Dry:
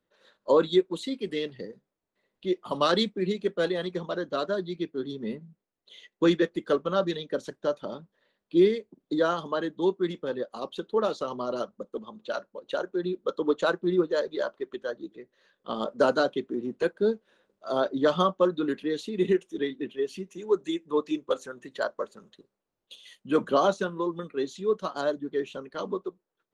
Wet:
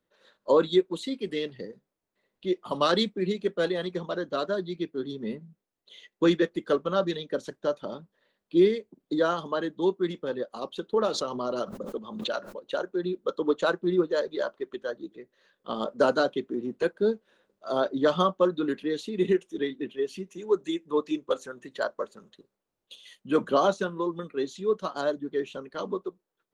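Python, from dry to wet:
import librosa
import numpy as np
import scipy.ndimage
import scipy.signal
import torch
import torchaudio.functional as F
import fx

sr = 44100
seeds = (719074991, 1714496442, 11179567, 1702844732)

y = fx.pre_swell(x, sr, db_per_s=58.0, at=(10.93, 12.62))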